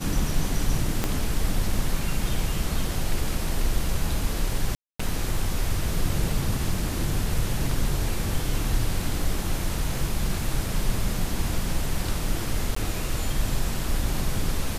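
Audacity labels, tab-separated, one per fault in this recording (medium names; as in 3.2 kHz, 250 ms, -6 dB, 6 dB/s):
1.040000	1.040000	pop -9 dBFS
4.750000	5.000000	dropout 245 ms
12.750000	12.760000	dropout 14 ms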